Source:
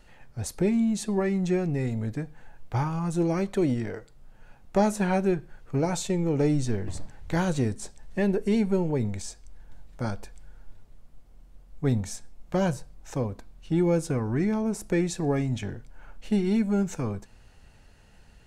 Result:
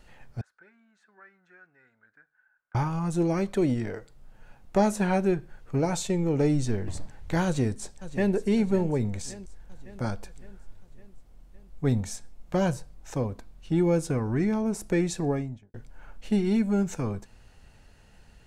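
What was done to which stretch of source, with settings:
0.41–2.75 s: band-pass filter 1.5 kHz, Q 16
7.45–8.33 s: echo throw 560 ms, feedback 60%, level -14 dB
15.17–15.74 s: studio fade out

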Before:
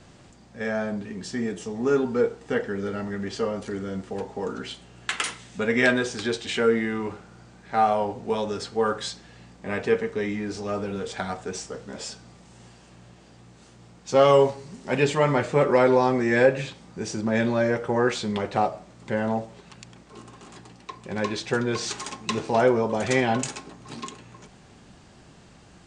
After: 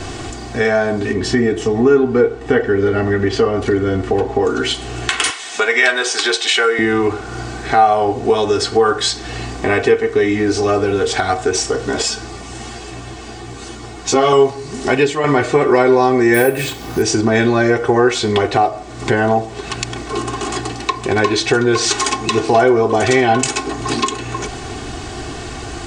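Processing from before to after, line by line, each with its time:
1.13–4.45 s: tone controls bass +4 dB, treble -9 dB
5.30–6.79 s: high-pass 720 Hz
12.02–14.33 s: three-phase chorus
14.84–15.24 s: fade out, to -13 dB
16.34–17.02 s: careless resampling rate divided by 4×, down none, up hold
whole clip: comb 2.7 ms, depth 76%; compression 2.5:1, threshold -40 dBFS; loudness maximiser +23.5 dB; trim -1 dB

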